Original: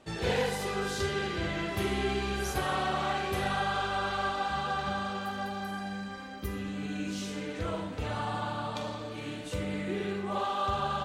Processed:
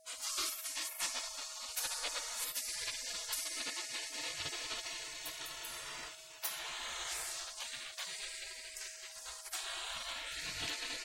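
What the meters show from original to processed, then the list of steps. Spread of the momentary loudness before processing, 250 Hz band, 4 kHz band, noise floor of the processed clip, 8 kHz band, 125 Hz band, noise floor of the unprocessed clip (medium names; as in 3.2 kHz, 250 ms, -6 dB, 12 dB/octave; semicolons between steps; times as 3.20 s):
7 LU, -25.5 dB, -0.5 dB, -51 dBFS, +7.5 dB, -27.0 dB, -40 dBFS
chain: spectral gate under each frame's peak -30 dB weak; whistle 640 Hz -74 dBFS; trim +11.5 dB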